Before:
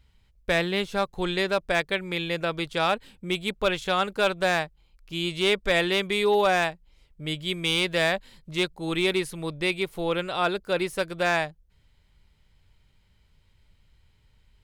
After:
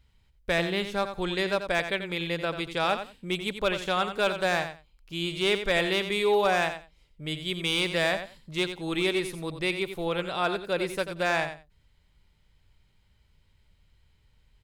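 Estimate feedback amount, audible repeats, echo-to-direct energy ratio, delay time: 17%, 2, -9.5 dB, 89 ms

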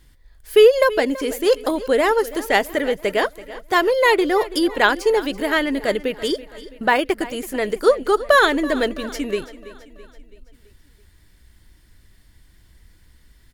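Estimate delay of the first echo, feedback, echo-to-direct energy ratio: 331 ms, 52%, -15.5 dB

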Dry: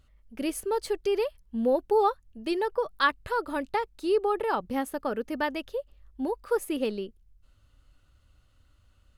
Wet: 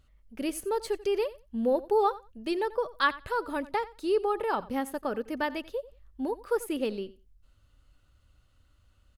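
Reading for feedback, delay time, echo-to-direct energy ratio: 15%, 89 ms, -18.5 dB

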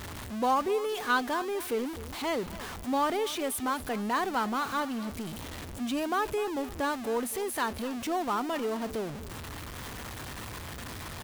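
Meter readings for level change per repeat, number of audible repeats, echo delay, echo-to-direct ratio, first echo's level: -12.0 dB, 2, 252 ms, -16.0 dB, -16.5 dB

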